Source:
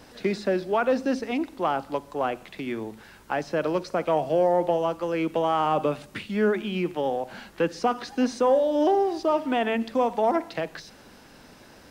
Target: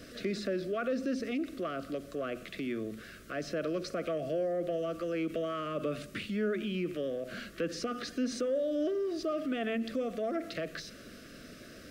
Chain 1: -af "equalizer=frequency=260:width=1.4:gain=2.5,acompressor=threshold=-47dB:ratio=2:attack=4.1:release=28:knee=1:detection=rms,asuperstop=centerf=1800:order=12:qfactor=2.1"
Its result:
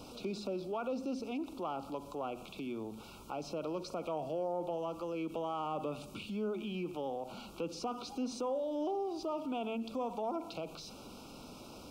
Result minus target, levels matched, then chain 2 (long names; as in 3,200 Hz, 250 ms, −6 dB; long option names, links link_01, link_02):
1,000 Hz band +7.0 dB; downward compressor: peak gain reduction +5 dB
-af "equalizer=frequency=260:width=1.4:gain=2.5,acompressor=threshold=-37.5dB:ratio=2:attack=4.1:release=28:knee=1:detection=rms,asuperstop=centerf=880:order=12:qfactor=2.1"